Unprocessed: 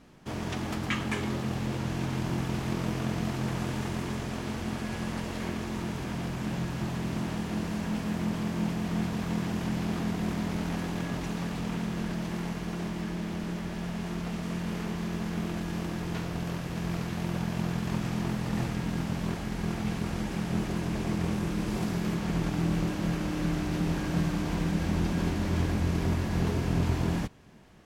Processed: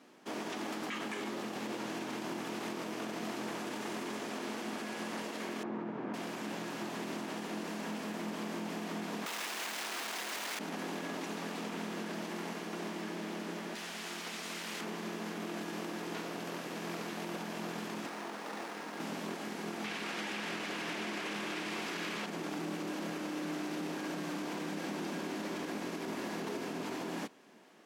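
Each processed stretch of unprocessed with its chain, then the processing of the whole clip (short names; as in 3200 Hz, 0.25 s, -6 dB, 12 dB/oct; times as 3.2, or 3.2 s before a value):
5.63–6.14 LPF 1400 Hz + low shelf 160 Hz +9 dB
9.26–10.59 overdrive pedal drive 40 dB, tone 2100 Hz, clips at -17.5 dBFS + tilt +4 dB/oct
13.75–14.81 tilt shelf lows -7.5 dB, about 1300 Hz + Doppler distortion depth 0.29 ms
18.06–19 weighting filter A + running maximum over 9 samples
19.84–22.26 bell 2500 Hz +11 dB 2.5 oct + echo 0.475 s -3.5 dB
whole clip: HPF 250 Hz 24 dB/oct; limiter -29 dBFS; gain -1 dB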